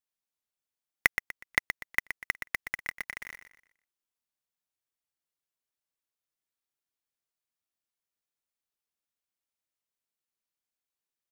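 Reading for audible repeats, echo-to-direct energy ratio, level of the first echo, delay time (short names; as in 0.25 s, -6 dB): 3, -8.5 dB, -9.0 dB, 0.122 s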